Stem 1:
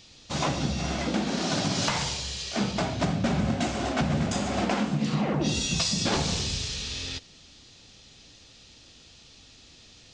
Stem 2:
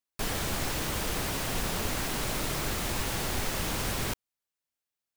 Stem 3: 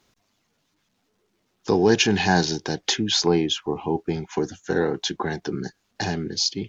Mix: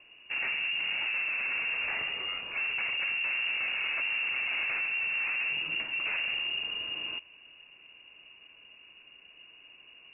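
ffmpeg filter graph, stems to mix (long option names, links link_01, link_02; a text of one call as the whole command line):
ffmpeg -i stem1.wav -i stem2.wav -i stem3.wav -filter_complex "[0:a]tiltshelf=frequency=860:gain=5,volume=-1dB[link_01];[1:a]asoftclip=type=hard:threshold=-32dB,highpass=1400,adelay=1350,volume=-7dB[link_02];[2:a]acompressor=threshold=-32dB:ratio=2.5,volume=-10dB[link_03];[link_01][link_02][link_03]amix=inputs=3:normalize=0,volume=30dB,asoftclip=hard,volume=-30dB,lowpass=frequency=2500:width_type=q:width=0.5098,lowpass=frequency=2500:width_type=q:width=0.6013,lowpass=frequency=2500:width_type=q:width=0.9,lowpass=frequency=2500:width_type=q:width=2.563,afreqshift=-2900" out.wav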